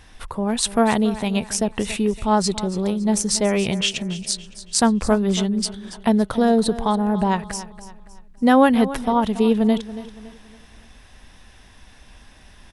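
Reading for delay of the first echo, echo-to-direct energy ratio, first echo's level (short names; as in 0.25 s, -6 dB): 0.281 s, -14.5 dB, -15.0 dB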